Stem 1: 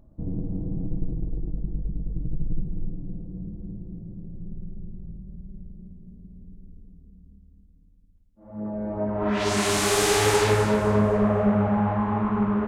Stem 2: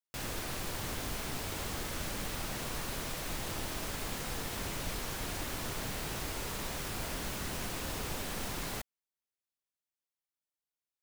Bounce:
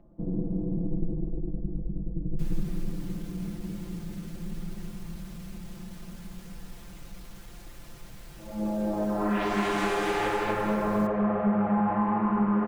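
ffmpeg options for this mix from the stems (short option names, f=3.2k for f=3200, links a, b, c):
-filter_complex "[0:a]acrossover=split=210 2800:gain=0.126 1 0.126[a][b][c];[a][b][c]amix=inputs=3:normalize=0,acompressor=threshold=-27dB:ratio=3,volume=0.5dB[d];[1:a]asoftclip=type=tanh:threshold=-34.5dB,adelay=2250,volume=-12.5dB[e];[d][e]amix=inputs=2:normalize=0,lowshelf=f=150:g=11.5,aecho=1:1:5.8:0.67"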